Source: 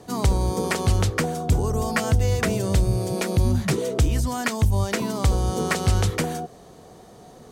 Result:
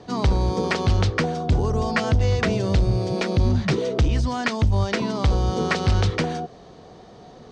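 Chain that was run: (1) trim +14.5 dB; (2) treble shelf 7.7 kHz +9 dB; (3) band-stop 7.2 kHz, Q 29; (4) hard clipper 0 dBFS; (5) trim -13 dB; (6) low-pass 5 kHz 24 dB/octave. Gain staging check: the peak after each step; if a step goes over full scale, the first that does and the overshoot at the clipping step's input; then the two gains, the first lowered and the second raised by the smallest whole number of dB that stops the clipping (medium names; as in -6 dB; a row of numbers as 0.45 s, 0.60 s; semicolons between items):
+4.0 dBFS, +5.5 dBFS, +5.0 dBFS, 0.0 dBFS, -13.0 dBFS, -11.5 dBFS; step 1, 5.0 dB; step 1 +9.5 dB, step 5 -8 dB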